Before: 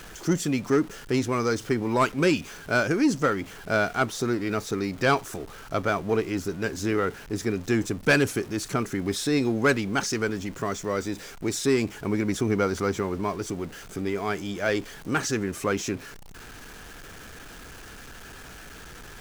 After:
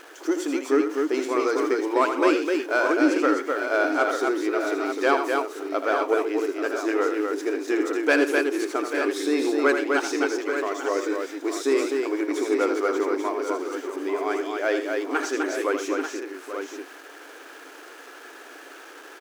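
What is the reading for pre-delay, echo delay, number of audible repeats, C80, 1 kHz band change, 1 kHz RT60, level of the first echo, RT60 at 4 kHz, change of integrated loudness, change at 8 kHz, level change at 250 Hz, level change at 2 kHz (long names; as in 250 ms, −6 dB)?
no reverb audible, 80 ms, 5, no reverb audible, +3.5 dB, no reverb audible, −8.0 dB, no reverb audible, +2.0 dB, −3.5 dB, +1.5 dB, +2.0 dB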